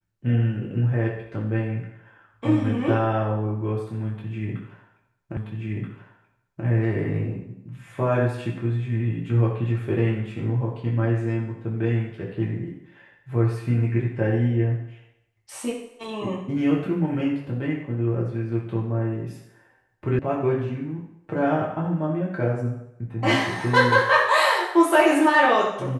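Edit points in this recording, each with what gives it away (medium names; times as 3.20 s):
5.37 s: repeat of the last 1.28 s
20.19 s: sound stops dead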